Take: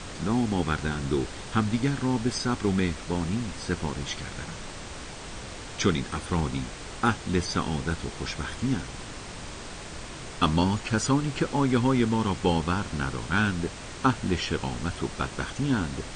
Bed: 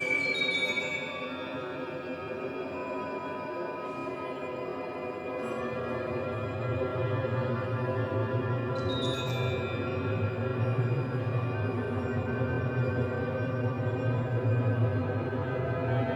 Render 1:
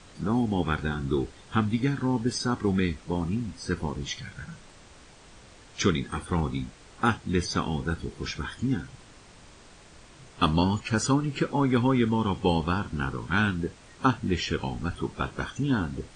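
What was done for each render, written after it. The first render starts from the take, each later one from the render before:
noise reduction from a noise print 12 dB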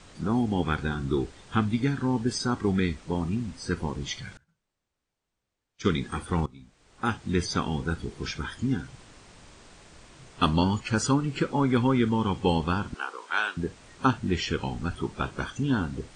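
0:04.37–0:05.90: expander for the loud parts 2.5 to 1, over −41 dBFS
0:06.46–0:07.25: fade in quadratic, from −18.5 dB
0:12.94–0:13.57: high-pass filter 480 Hz 24 dB per octave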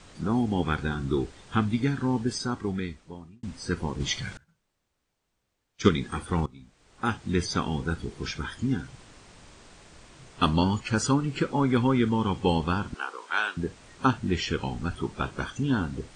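0:02.14–0:03.43: fade out linear
0:04.00–0:05.89: clip gain +5 dB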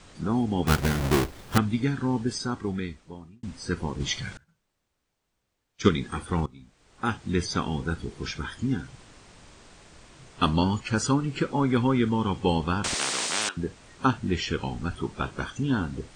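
0:00.67–0:01.58: each half-wave held at its own peak
0:12.84–0:13.49: every bin compressed towards the loudest bin 10 to 1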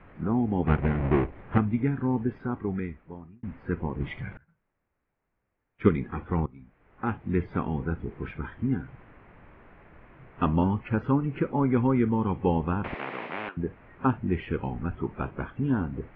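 dynamic equaliser 1,500 Hz, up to −6 dB, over −44 dBFS, Q 1.6
Butterworth low-pass 2,300 Hz 36 dB per octave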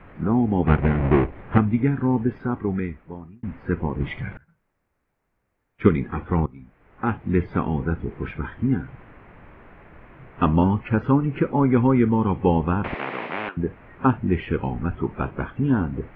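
level +5.5 dB
brickwall limiter −3 dBFS, peak gain reduction 2 dB

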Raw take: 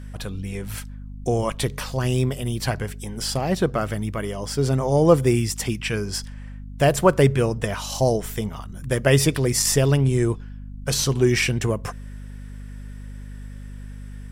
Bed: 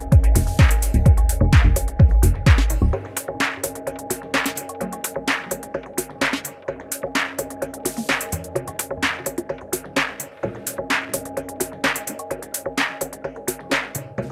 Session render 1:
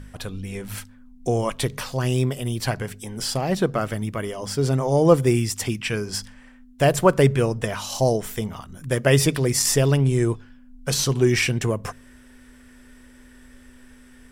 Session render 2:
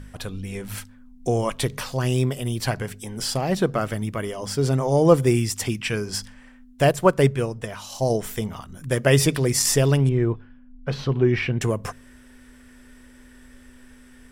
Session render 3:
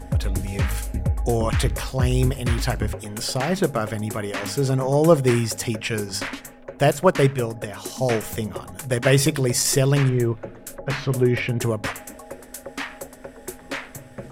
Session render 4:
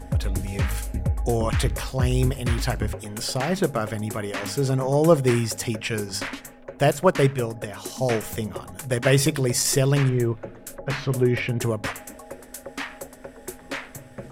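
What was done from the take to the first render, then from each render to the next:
hum removal 50 Hz, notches 4
0:06.91–0:08.10: expander for the loud parts, over −24 dBFS; 0:10.09–0:11.61: high-frequency loss of the air 360 metres
mix in bed −9.5 dB
level −1.5 dB

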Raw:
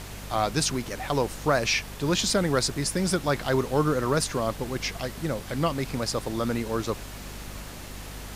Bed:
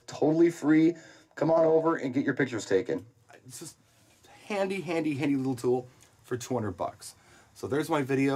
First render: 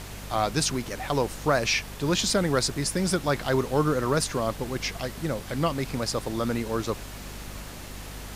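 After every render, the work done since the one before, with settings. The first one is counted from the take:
no processing that can be heard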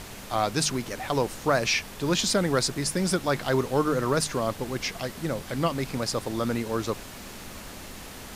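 mains-hum notches 50/100/150 Hz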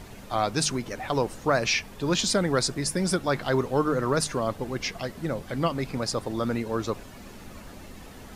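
broadband denoise 9 dB, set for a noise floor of −42 dBFS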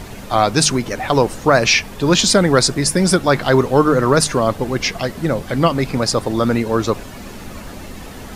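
level +11 dB
brickwall limiter −1 dBFS, peak gain reduction 1.5 dB

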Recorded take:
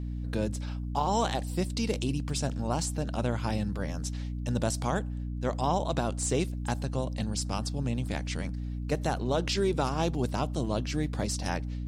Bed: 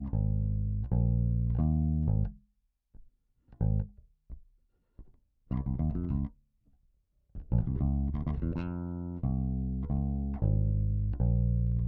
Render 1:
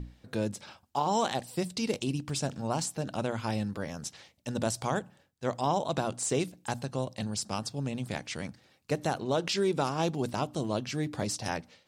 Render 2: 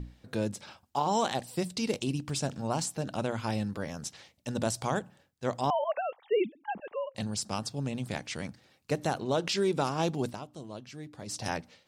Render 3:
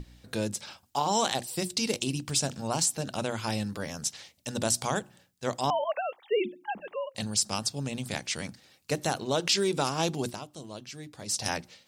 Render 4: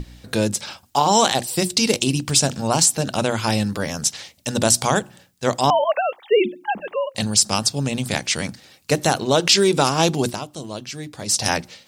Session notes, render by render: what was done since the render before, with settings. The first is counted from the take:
mains-hum notches 60/120/180/240/300 Hz
0:05.70–0:07.15: three sine waves on the formant tracks; 0:10.25–0:11.39: duck −11.5 dB, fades 0.14 s
high-shelf EQ 2,800 Hz +10 dB; mains-hum notches 60/120/180/240/300/360 Hz
level +10.5 dB; brickwall limiter −2 dBFS, peak gain reduction 2.5 dB

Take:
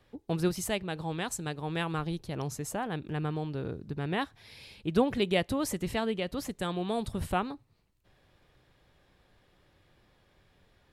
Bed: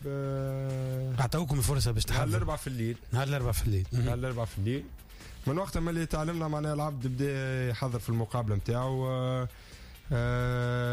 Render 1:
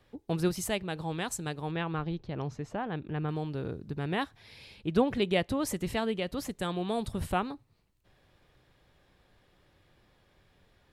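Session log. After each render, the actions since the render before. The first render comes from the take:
0:01.71–0:03.29: high-frequency loss of the air 210 metres
0:04.37–0:05.67: high-shelf EQ 7,300 Hz −7 dB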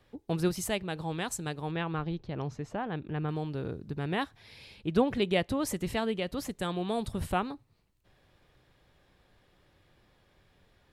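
no processing that can be heard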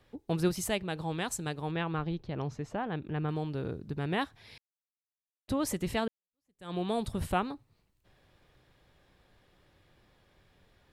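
0:04.58–0:05.48: silence
0:06.08–0:06.74: fade in exponential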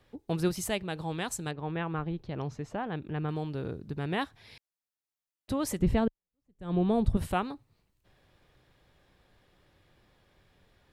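0:01.51–0:02.18: low-pass filter 2,600 Hz
0:05.79–0:07.17: spectral tilt −3.5 dB per octave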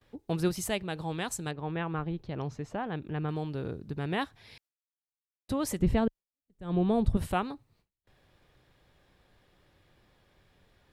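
noise gate with hold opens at −57 dBFS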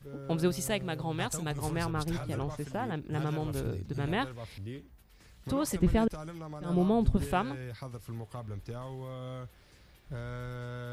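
mix in bed −10.5 dB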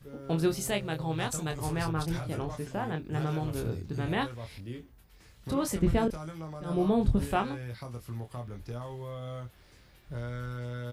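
double-tracking delay 25 ms −6 dB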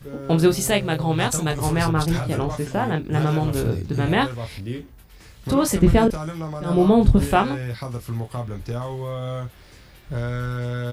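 level +10.5 dB

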